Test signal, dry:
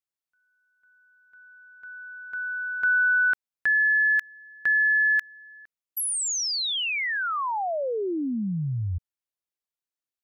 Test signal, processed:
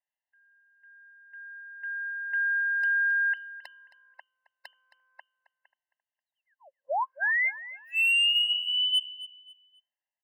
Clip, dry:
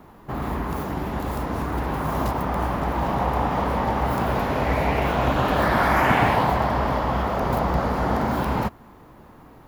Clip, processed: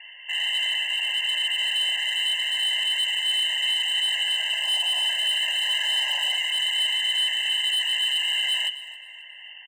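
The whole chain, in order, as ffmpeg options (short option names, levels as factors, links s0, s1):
-filter_complex "[0:a]highpass=42,equalizer=f=150:t=o:w=0.74:g=-12.5,bandreject=f=50:t=h:w=6,bandreject=f=100:t=h:w=6,bandreject=f=150:t=h:w=6,bandreject=f=200:t=h:w=6,bandreject=f=250:t=h:w=6,acrossover=split=280[s0][s1];[s1]acompressor=threshold=0.0282:ratio=5:attack=1.7:release=45:knee=2.83:detection=peak[s2];[s0][s2]amix=inputs=2:normalize=0,asoftclip=type=tanh:threshold=0.106,lowpass=f=2600:t=q:w=0.5098,lowpass=f=2600:t=q:w=0.6013,lowpass=f=2600:t=q:w=0.9,lowpass=f=2600:t=q:w=2.563,afreqshift=-3100,crystalizer=i=1.5:c=0,asoftclip=type=hard:threshold=0.0447,aecho=1:1:268|536|804:0.158|0.0475|0.0143,afftfilt=real='re*eq(mod(floor(b*sr/1024/530),2),1)':imag='im*eq(mod(floor(b*sr/1024/530),2),1)':win_size=1024:overlap=0.75,volume=2.11"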